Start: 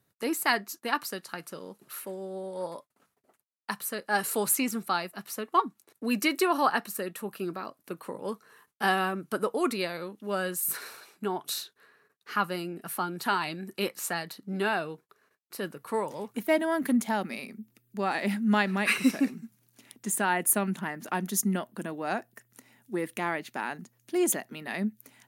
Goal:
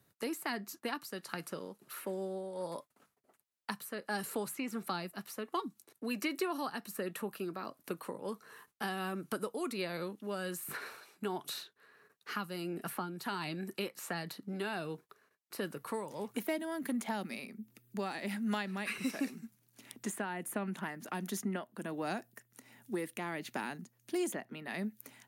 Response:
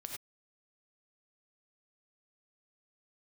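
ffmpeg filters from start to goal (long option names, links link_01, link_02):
-filter_complex "[0:a]tremolo=f=1.4:d=0.57,acrossover=split=330|3200[link_01][link_02][link_03];[link_01]acompressor=threshold=-43dB:ratio=4[link_04];[link_02]acompressor=threshold=-41dB:ratio=4[link_05];[link_03]acompressor=threshold=-49dB:ratio=4[link_06];[link_04][link_05][link_06]amix=inputs=3:normalize=0,volume=2.5dB"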